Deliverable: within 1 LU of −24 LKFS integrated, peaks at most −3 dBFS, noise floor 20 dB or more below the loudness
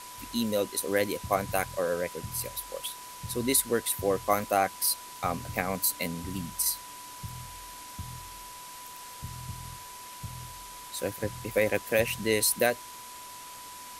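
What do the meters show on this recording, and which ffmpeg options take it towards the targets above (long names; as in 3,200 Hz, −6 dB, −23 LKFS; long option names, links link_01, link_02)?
interfering tone 990 Hz; level of the tone −45 dBFS; background noise floor −45 dBFS; target noise floor −49 dBFS; integrated loudness −29.0 LKFS; sample peak −10.5 dBFS; target loudness −24.0 LKFS
→ -af "bandreject=frequency=990:width=30"
-af "afftdn=noise_reduction=6:noise_floor=-45"
-af "volume=5dB"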